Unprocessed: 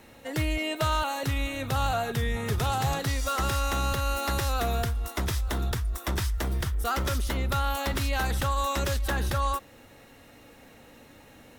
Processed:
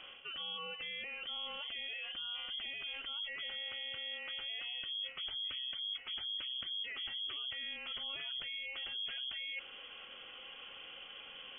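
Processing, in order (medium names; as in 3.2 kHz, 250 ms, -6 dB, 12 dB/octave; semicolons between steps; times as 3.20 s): band-stop 1.6 kHz, Q 14; spectral gate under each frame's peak -30 dB strong; peak limiter -27 dBFS, peak gain reduction 10 dB; reverse; compression 6:1, threshold -43 dBFS, peak gain reduction 13 dB; reverse; frequency inversion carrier 3.3 kHz; trim +1.5 dB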